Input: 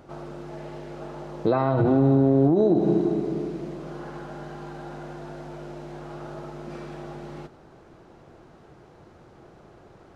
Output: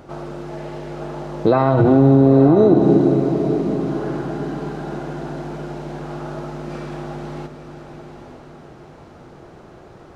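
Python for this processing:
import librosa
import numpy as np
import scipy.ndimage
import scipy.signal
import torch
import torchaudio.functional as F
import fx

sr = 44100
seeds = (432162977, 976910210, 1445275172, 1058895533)

y = fx.echo_diffused(x, sr, ms=904, feedback_pct=41, wet_db=-9.0)
y = F.gain(torch.from_numpy(y), 7.0).numpy()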